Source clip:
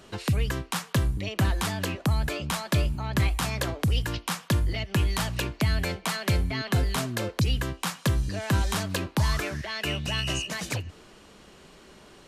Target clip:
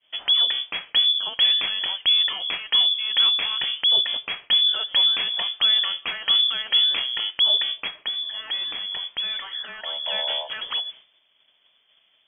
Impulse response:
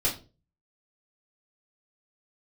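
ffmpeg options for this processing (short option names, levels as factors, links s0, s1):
-filter_complex "[0:a]lowshelf=f=460:g=5,agate=range=0.0224:threshold=0.0126:ratio=3:detection=peak,asettb=1/sr,asplit=3[s0][s1][s2];[s0]atrim=end=7.874[s3];[s1]atrim=start=7.87:end=10.06,asetpts=PTS-STARTPTS,afade=t=in:d=0.004:c=qsin,afade=t=out:st=2.186:d=0.004:c=qsin,acrossover=split=250|1300[s4][s5][s6];[s4]acompressor=threshold=0.0398:ratio=4[s7];[s5]acompressor=threshold=0.00562:ratio=4[s8];[s6]acompressor=threshold=0.02:ratio=4[s9];[s7][s8][s9]amix=inputs=3:normalize=0[s10];[s2]atrim=start=10.056[s11];[s3][s10]acrossfade=d=0.004:c1=hsin:c2=qsin[s12];[s12][s11]acrossfade=d=0.004:c1=qsin:c2=hsin,lowpass=f=3000:t=q:w=0.5098,lowpass=f=3000:t=q:w=0.6013,lowpass=f=3000:t=q:w=0.9,lowpass=f=3000:t=q:w=2.563,afreqshift=-3500"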